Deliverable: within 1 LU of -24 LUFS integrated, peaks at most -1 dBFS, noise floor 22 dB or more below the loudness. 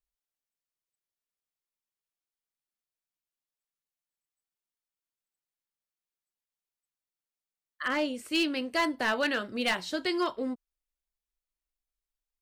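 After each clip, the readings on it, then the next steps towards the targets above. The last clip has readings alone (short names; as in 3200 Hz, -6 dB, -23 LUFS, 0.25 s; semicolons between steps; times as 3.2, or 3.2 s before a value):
clipped 0.2%; flat tops at -21.0 dBFS; loudness -30.0 LUFS; peak -21.0 dBFS; loudness target -24.0 LUFS
-> clip repair -21 dBFS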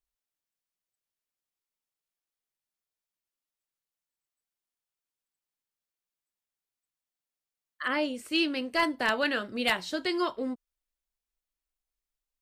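clipped 0.0%; loudness -29.0 LUFS; peak -12.0 dBFS; loudness target -24.0 LUFS
-> gain +5 dB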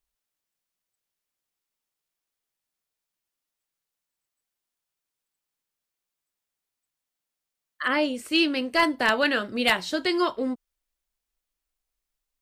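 loudness -24.0 LUFS; peak -7.0 dBFS; noise floor -86 dBFS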